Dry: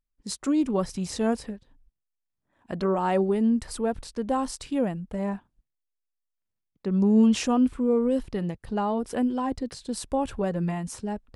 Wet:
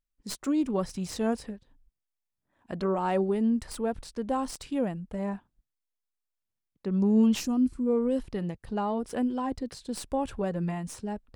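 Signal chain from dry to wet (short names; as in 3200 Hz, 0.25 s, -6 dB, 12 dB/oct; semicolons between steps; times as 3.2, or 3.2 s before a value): tracing distortion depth 0.039 ms; spectral gain 7.4–7.86, 380–4000 Hz -10 dB; gain -3 dB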